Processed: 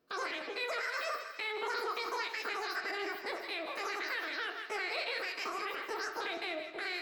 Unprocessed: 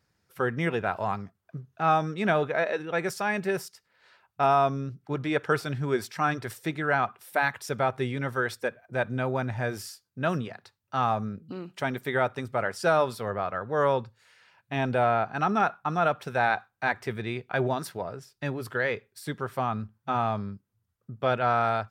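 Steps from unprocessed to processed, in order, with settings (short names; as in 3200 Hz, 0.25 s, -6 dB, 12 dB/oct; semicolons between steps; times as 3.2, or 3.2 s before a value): spectral dilation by 0.12 s; bell 2700 Hz -14 dB 2.2 oct; split-band echo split 330 Hz, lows 0.239 s, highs 0.492 s, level -13.5 dB; in parallel at -2.5 dB: compressor, threshold -33 dBFS, peak gain reduction 14 dB; on the sum: flange 0.17 Hz, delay 2.4 ms, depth 2.4 ms, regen +84%; wide varispeed 3.12×; limiter -22 dBFS, peak gain reduction 8 dB; on a send at -5.5 dB: reverb RT60 0.70 s, pre-delay 4 ms; on the sum: gain -6.5 dB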